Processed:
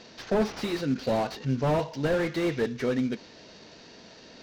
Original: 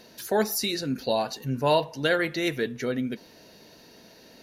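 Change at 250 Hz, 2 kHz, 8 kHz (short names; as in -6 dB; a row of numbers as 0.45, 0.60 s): +1.5, -5.5, -10.5 dB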